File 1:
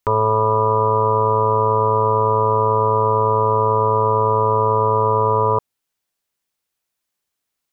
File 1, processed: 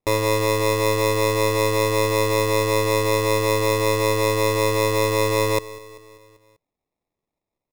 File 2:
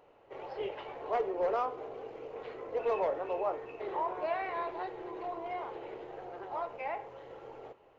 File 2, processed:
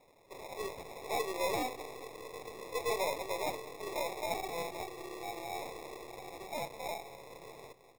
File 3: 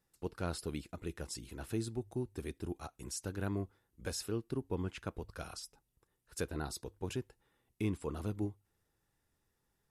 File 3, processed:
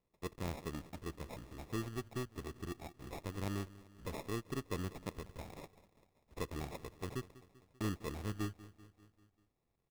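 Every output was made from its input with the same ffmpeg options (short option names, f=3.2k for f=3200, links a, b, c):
-filter_complex "[0:a]aeval=exprs='if(lt(val(0),0),0.708*val(0),val(0))':c=same,lowpass=10k,acontrast=63,asplit=2[a][b];[b]aecho=0:1:195|390|585|780|975:0.119|0.0701|0.0414|0.0244|0.0144[c];[a][c]amix=inputs=2:normalize=0,acrusher=samples=29:mix=1:aa=0.000001,volume=-8dB"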